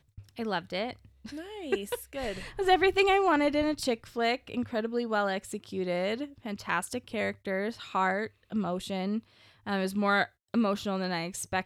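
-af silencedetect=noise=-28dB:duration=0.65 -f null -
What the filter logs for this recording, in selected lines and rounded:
silence_start: 0.91
silence_end: 1.72 | silence_duration: 0.81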